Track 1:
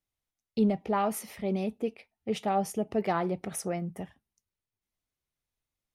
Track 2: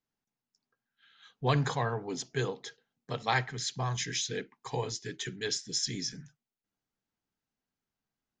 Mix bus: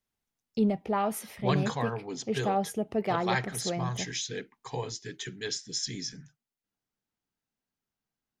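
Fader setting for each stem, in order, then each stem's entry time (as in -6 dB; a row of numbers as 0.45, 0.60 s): -0.5, -1.0 dB; 0.00, 0.00 s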